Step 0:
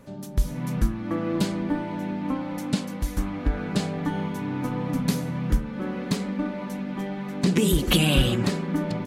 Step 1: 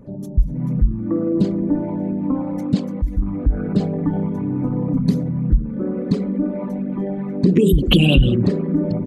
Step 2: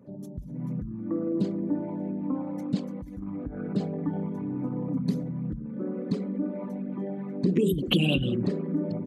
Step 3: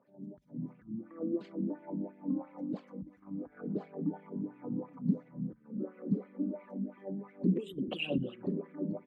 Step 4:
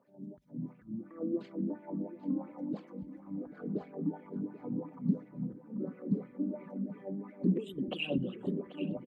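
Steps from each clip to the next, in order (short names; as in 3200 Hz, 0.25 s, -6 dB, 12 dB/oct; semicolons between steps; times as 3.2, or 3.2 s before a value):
formant sharpening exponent 2; gain +7 dB
HPF 140 Hz 12 dB/oct; gain -8.5 dB
wah 2.9 Hz 200–2400 Hz, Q 2.4
feedback echo 0.787 s, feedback 31%, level -15 dB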